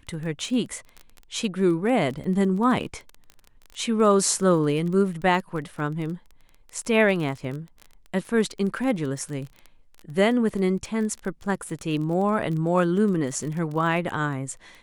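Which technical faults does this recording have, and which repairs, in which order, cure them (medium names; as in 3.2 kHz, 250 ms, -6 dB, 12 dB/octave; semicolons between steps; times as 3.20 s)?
crackle 25 per s -31 dBFS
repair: de-click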